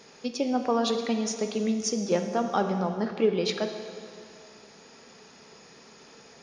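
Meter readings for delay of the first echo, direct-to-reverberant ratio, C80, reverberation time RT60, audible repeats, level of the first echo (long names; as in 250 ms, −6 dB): no echo audible, 6.0 dB, 8.5 dB, 2.3 s, no echo audible, no echo audible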